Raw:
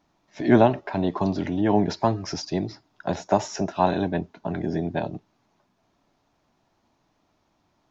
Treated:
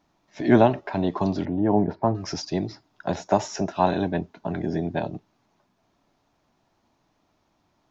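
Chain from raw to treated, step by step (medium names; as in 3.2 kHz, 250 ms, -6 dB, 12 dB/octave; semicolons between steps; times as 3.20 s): 1.45–2.15 s: low-pass 1.1 kHz 12 dB/octave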